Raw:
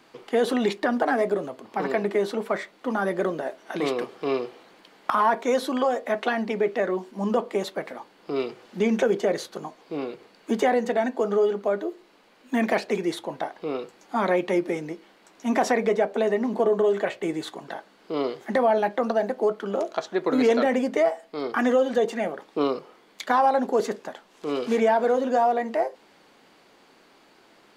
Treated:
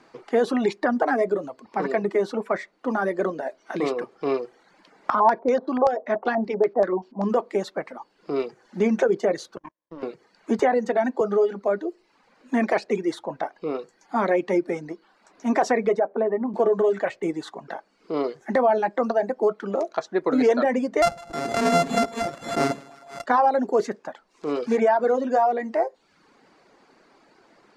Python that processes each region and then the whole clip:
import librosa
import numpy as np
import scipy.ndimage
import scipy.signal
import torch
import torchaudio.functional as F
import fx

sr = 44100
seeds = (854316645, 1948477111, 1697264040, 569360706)

y = fx.chain(x, sr, fx.high_shelf(hz=2500.0, db=-7.0),
    fx.filter_lfo_lowpass(shape='square', hz=5.2, low_hz=810.0, high_hz=4900.0, q=2.0), at=(5.1, 7.29))
y = fx.chain(y, sr, fx.ripple_eq(per_octave=1.2, db=16),
    fx.level_steps(step_db=11),
    fx.power_curve(exponent=2.0), at=(9.56, 10.03))
y = fx.chain(y, sr, fx.high_shelf(hz=9100.0, db=-3.5),
    fx.band_squash(depth_pct=40), at=(10.59, 11.21))
y = fx.chain(y, sr, fx.lowpass(hz=1300.0, slope=12),
    fx.low_shelf(hz=210.0, db=-5.0), at=(15.99, 16.54))
y = fx.chain(y, sr, fx.sample_sort(block=64),
    fx.echo_split(split_hz=580.0, low_ms=92, high_ms=155, feedback_pct=52, wet_db=-11.0),
    fx.pre_swell(db_per_s=77.0), at=(21.02, 23.26))
y = fx.dereverb_blind(y, sr, rt60_s=0.7)
y = scipy.signal.sosfilt(scipy.signal.butter(2, 6600.0, 'lowpass', fs=sr, output='sos'), y)
y = fx.peak_eq(y, sr, hz=3200.0, db=-8.5, octaves=0.75)
y = y * 10.0 ** (2.0 / 20.0)